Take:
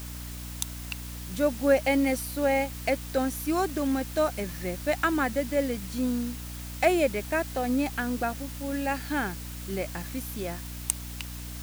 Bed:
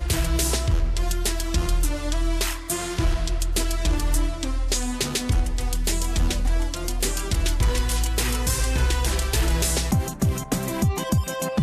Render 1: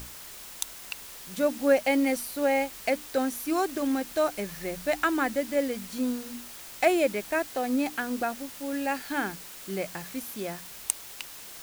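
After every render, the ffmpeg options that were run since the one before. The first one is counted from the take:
-af "bandreject=f=60:t=h:w=6,bandreject=f=120:t=h:w=6,bandreject=f=180:t=h:w=6,bandreject=f=240:t=h:w=6,bandreject=f=300:t=h:w=6"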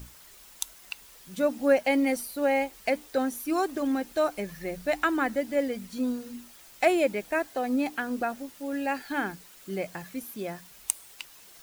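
-af "afftdn=nr=9:nf=-44"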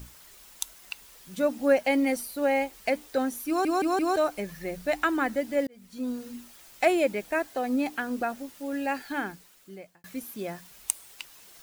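-filter_complex "[0:a]asplit=7[a][b][c][d][e][f][g];[a]atrim=end=3.652[h];[b]atrim=start=3.478:end=3.652[i];[c]atrim=start=3.478:end=3.652[j];[d]atrim=start=3.478:end=3.652[k];[e]atrim=start=4.158:end=5.67,asetpts=PTS-STARTPTS,afade=t=out:st=1.508:d=0.004:c=hsin[l];[f]atrim=start=5.67:end=10.04,asetpts=PTS-STARTPTS,afade=t=in:d=0.56,afade=t=out:st=3.35:d=1.02[m];[g]atrim=start=10.04,asetpts=PTS-STARTPTS,afade=t=in:d=0.004:c=hsin[n];[h][i]acrossfade=d=0.004:c1=hsin:c2=hsin[o];[o][j]acrossfade=d=0.004:c1=hsin:c2=hsin[p];[p][k]acrossfade=d=0.004:c1=hsin:c2=hsin[q];[l][m][n]concat=n=3:v=0:a=1[r];[q][r]acrossfade=d=0.004:c1=hsin:c2=hsin"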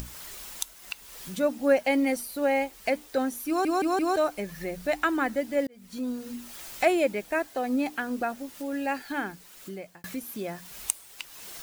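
-af "acompressor=mode=upward:threshold=-31dB:ratio=2.5"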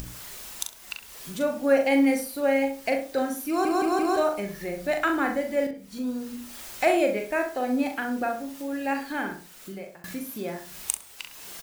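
-filter_complex "[0:a]asplit=2[a][b];[b]adelay=40,volume=-5.5dB[c];[a][c]amix=inputs=2:normalize=0,asplit=2[d][e];[e]adelay=66,lowpass=f=1.7k:p=1,volume=-7dB,asplit=2[f][g];[g]adelay=66,lowpass=f=1.7k:p=1,volume=0.3,asplit=2[h][i];[i]adelay=66,lowpass=f=1.7k:p=1,volume=0.3,asplit=2[j][k];[k]adelay=66,lowpass=f=1.7k:p=1,volume=0.3[l];[f][h][j][l]amix=inputs=4:normalize=0[m];[d][m]amix=inputs=2:normalize=0"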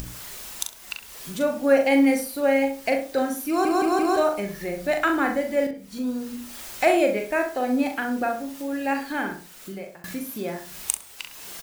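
-af "volume=2.5dB"

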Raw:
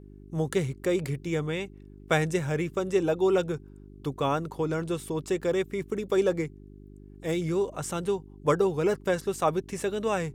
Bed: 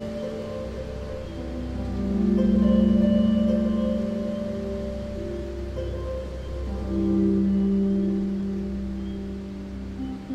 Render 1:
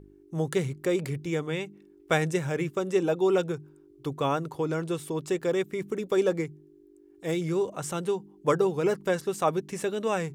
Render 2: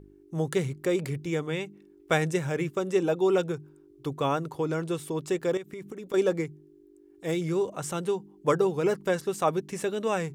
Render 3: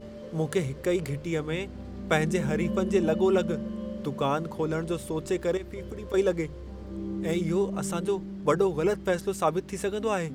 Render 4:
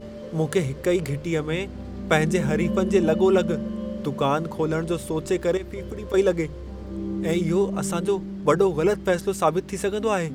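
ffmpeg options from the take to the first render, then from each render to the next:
-af "bandreject=f=50:t=h:w=4,bandreject=f=100:t=h:w=4,bandreject=f=150:t=h:w=4,bandreject=f=200:t=h:w=4,bandreject=f=250:t=h:w=4"
-filter_complex "[0:a]asettb=1/sr,asplit=3[a][b][c];[a]atrim=end=5.574[d];[b]atrim=start=5.57:end=6.14,asetpts=PTS-STARTPTS,afade=t=in:d=0.004:c=qsin,afade=t=out:st=0.566:d=0.004:c=qsin,acompressor=threshold=-35dB:ratio=8:attack=3.2:release=140:knee=1:detection=peak[e];[c]atrim=start=6.136[f];[d][e]acrossfade=d=0.004:c1=hsin:c2=qsin[g];[g][f]acrossfade=d=0.004:c1=qsin:c2=hsin"
-filter_complex "[1:a]volume=-11dB[a];[0:a][a]amix=inputs=2:normalize=0"
-af "volume=4.5dB"

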